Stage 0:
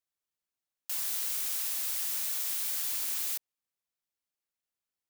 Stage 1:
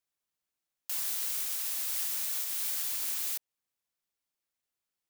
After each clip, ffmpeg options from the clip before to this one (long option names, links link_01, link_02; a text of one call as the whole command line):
ffmpeg -i in.wav -af "alimiter=limit=-24dB:level=0:latency=1:release=269,volume=2dB" out.wav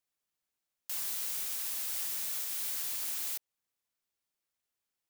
ffmpeg -i in.wav -af "asoftclip=type=tanh:threshold=-30dB" out.wav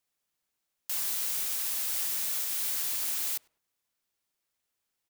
ffmpeg -i in.wav -filter_complex "[0:a]asplit=2[link_01][link_02];[link_02]adelay=101,lowpass=frequency=1500:poles=1,volume=-21dB,asplit=2[link_03][link_04];[link_04]adelay=101,lowpass=frequency=1500:poles=1,volume=0.33[link_05];[link_01][link_03][link_05]amix=inputs=3:normalize=0,volume=4.5dB" out.wav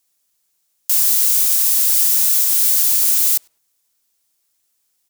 ffmpeg -i in.wav -af "bass=frequency=250:gain=-1,treble=frequency=4000:gain=11,volume=6dB" out.wav